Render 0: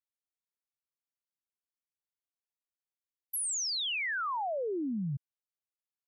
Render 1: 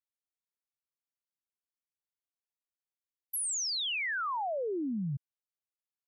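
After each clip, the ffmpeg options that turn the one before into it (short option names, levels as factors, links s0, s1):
-af anull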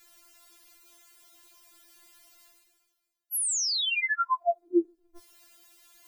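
-af "areverse,acompressor=mode=upward:threshold=0.0141:ratio=2.5,areverse,afftfilt=real='re*4*eq(mod(b,16),0)':imag='im*4*eq(mod(b,16),0)':win_size=2048:overlap=0.75,volume=2.37"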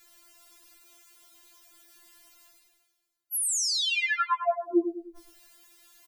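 -af "aecho=1:1:102|204|306|408|510:0.355|0.153|0.0656|0.0282|0.0121"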